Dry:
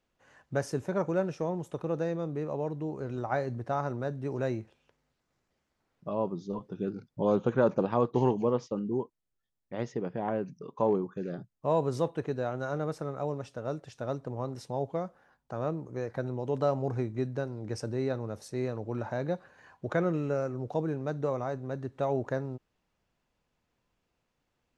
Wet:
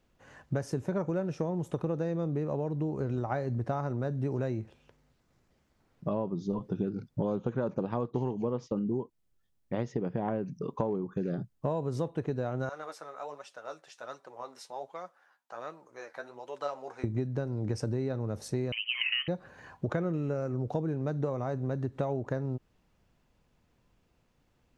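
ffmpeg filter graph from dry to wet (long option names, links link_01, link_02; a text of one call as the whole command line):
ffmpeg -i in.wav -filter_complex "[0:a]asettb=1/sr,asplit=3[link_01][link_02][link_03];[link_01]atrim=end=12.694[link_04];[link_02]atrim=start=12.69:end=17.04,asetpts=PTS-STARTPTS,afade=type=in:duration=0.004:curve=qsin,afade=type=out:start_time=4.346:duration=0.004:curve=qsin,flanger=delay=5.1:depth=7.7:regen=39:speed=1.3:shape=sinusoidal,highpass=970[link_05];[link_03]atrim=start=17.036[link_06];[link_04][link_05]acrossfade=duration=0.004:curve1=hsin:curve2=qsin[link_07];[link_07][link_06]acrossfade=duration=0.004:curve1=qsin:curve2=hsin,asettb=1/sr,asplit=3[link_08][link_09][link_10];[link_08]atrim=end=18.724[link_11];[link_09]atrim=start=18.72:end=19.28,asetpts=PTS-STARTPTS,afade=type=in:duration=0.004:curve=qsin,afade=type=out:start_time=0.556:duration=0.004:curve=qsin,highpass=frequency=510:width=0.5412,highpass=frequency=510:width=1.3066,equalizer=frequency=1000:width_type=o:width=2.1:gain=14,lowpass=frequency=3000:width_type=q:width=0.5098,lowpass=frequency=3000:width_type=q:width=0.6013,lowpass=frequency=3000:width_type=q:width=0.9,lowpass=frequency=3000:width_type=q:width=2.563,afreqshift=-3500[link_12];[link_10]atrim=start=19.276[link_13];[link_11][link_12]acrossfade=duration=0.004:curve1=hsin:curve2=qsin[link_14];[link_14][link_13]acrossfade=duration=0.004:curve1=qsin:curve2=hsin,lowshelf=frequency=320:gain=7.5,acompressor=threshold=-32dB:ratio=10,volume=4.5dB" out.wav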